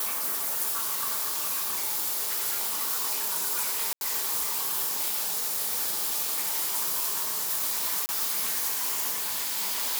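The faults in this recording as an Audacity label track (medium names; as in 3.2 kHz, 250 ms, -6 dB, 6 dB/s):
0.720000	2.820000	clipped -23.5 dBFS
3.930000	4.010000	dropout 81 ms
8.060000	8.090000	dropout 29 ms
9.110000	9.590000	clipped -26 dBFS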